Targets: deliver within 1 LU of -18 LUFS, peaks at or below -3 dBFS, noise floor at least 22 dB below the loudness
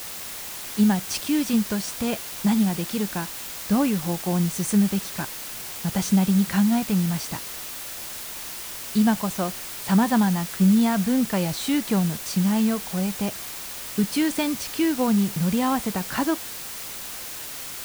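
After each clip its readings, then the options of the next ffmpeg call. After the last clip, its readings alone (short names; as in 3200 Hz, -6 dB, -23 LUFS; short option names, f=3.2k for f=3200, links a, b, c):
noise floor -35 dBFS; noise floor target -46 dBFS; loudness -24.0 LUFS; peak -9.0 dBFS; loudness target -18.0 LUFS
-> -af "afftdn=nr=11:nf=-35"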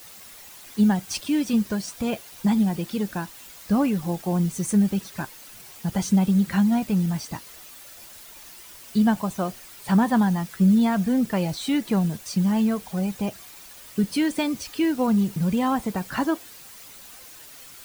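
noise floor -45 dBFS; noise floor target -46 dBFS
-> -af "afftdn=nr=6:nf=-45"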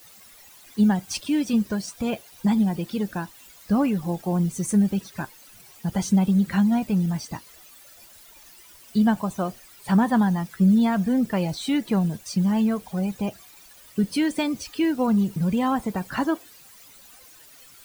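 noise floor -50 dBFS; loudness -24.0 LUFS; peak -9.5 dBFS; loudness target -18.0 LUFS
-> -af "volume=6dB"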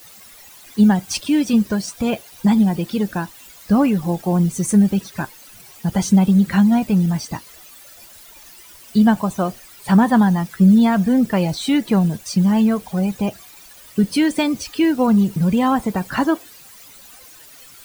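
loudness -18.0 LUFS; peak -3.5 dBFS; noise floor -44 dBFS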